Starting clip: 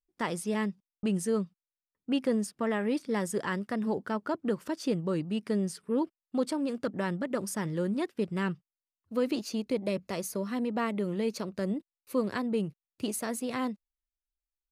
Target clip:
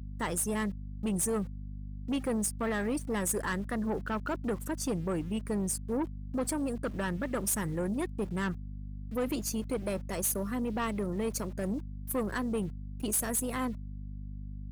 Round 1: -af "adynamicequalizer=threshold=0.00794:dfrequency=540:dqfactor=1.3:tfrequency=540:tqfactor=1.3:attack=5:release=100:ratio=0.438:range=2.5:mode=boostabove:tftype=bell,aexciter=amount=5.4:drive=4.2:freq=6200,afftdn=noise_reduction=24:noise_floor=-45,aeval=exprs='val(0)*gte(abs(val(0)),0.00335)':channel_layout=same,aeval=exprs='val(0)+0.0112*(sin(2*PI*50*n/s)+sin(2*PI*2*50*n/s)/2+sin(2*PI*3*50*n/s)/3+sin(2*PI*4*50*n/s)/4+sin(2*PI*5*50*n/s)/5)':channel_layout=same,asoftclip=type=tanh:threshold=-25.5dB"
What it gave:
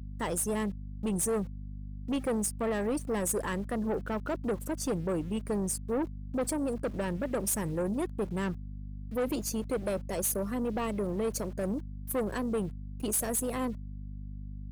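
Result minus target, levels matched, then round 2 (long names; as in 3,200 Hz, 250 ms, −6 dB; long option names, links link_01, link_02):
2,000 Hz band −3.5 dB
-af "adynamicequalizer=threshold=0.00794:dfrequency=1500:dqfactor=1.3:tfrequency=1500:tqfactor=1.3:attack=5:release=100:ratio=0.438:range=2.5:mode=boostabove:tftype=bell,aexciter=amount=5.4:drive=4.2:freq=6200,afftdn=noise_reduction=24:noise_floor=-45,aeval=exprs='val(0)*gte(abs(val(0)),0.00335)':channel_layout=same,aeval=exprs='val(0)+0.0112*(sin(2*PI*50*n/s)+sin(2*PI*2*50*n/s)/2+sin(2*PI*3*50*n/s)/3+sin(2*PI*4*50*n/s)/4+sin(2*PI*5*50*n/s)/5)':channel_layout=same,asoftclip=type=tanh:threshold=-25.5dB"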